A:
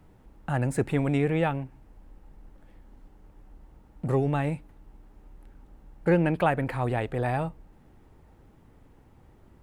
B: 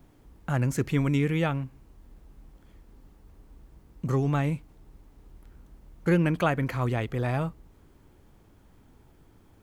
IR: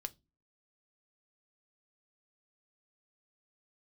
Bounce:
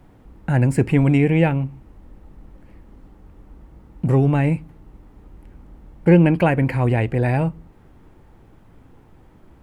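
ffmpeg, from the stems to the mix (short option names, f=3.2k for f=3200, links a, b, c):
-filter_complex "[0:a]volume=0.5dB,asplit=2[a][b];[b]volume=-4.5dB[c];[1:a]lowpass=2.6k,volume=0.5dB,asplit=2[d][e];[e]volume=-1dB[f];[2:a]atrim=start_sample=2205[g];[c][f]amix=inputs=2:normalize=0[h];[h][g]afir=irnorm=-1:irlink=0[i];[a][d][i]amix=inputs=3:normalize=0"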